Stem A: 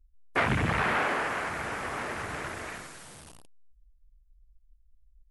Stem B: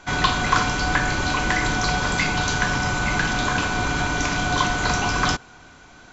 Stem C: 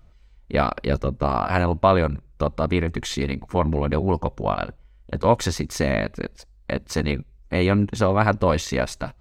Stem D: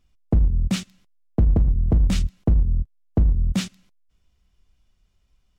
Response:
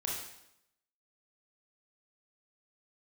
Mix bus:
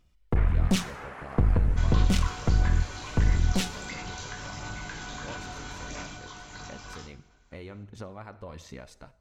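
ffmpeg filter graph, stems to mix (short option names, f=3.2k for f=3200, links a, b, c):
-filter_complex "[0:a]acrossover=split=2500[a][b];[b]acompressor=threshold=-44dB:ratio=4:attack=1:release=60[c];[a][c]amix=inputs=2:normalize=0,volume=-16.5dB,asplit=2[d][e];[e]volume=-5dB[f];[1:a]flanger=delay=19.5:depth=2.2:speed=0.65,highshelf=f=4.3k:g=6,adelay=1700,volume=-8.5dB,afade=t=out:st=6.01:d=0.21:silence=0.266073,asplit=2[g][h];[h]volume=-14.5dB[i];[2:a]volume=-18.5dB,asplit=2[j][k];[k]volume=-20dB[l];[3:a]highpass=f=92:p=1,aeval=exprs='(tanh(14.1*val(0)+0.7)-tanh(0.7))/14.1':c=same,volume=2dB,asplit=2[m][n];[n]volume=-14.5dB[o];[d][g][j]amix=inputs=3:normalize=0,acompressor=threshold=-40dB:ratio=6,volume=0dB[p];[4:a]atrim=start_sample=2205[q];[f][i][l][o]amix=inputs=4:normalize=0[r];[r][q]afir=irnorm=-1:irlink=0[s];[m][p][s]amix=inputs=3:normalize=0,aphaser=in_gain=1:out_gain=1:delay=2.4:decay=0.26:speed=1.5:type=sinusoidal"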